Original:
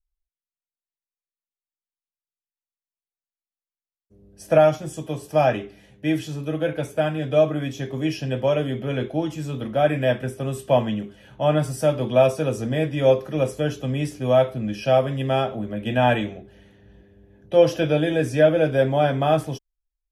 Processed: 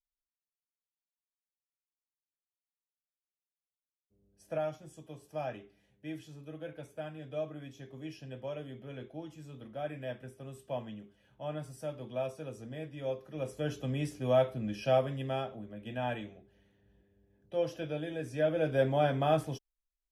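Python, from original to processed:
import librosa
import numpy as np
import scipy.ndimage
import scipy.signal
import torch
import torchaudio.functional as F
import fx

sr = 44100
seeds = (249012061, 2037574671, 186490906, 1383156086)

y = fx.gain(x, sr, db=fx.line((13.22, -19.0), (13.74, -9.0), (14.95, -9.0), (15.69, -16.5), (18.23, -16.5), (18.8, -8.5)))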